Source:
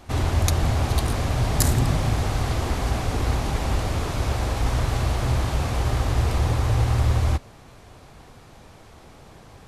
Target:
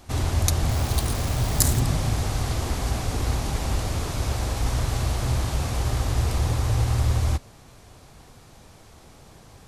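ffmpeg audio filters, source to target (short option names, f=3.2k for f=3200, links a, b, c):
-filter_complex "[0:a]bass=f=250:g=2,treble=f=4k:g=7,asettb=1/sr,asplit=3[a][b][c];[a]atrim=end=0.694[d];[b]atrim=start=0.69:end=1.8,asetpts=PTS-STARTPTS,afade=t=in:d=0.004:c=qsin,afade=t=out:st=1.106:d=0.004:c=qsin,acrusher=bits=6:dc=4:mix=0:aa=0.000001[e];[c]atrim=start=1.796[f];[d][e]acrossfade=d=0.004:c1=hsin:c2=qsin[g];[g][f]acrossfade=d=0.004:c1=qsin:c2=hsin,volume=-3.5dB"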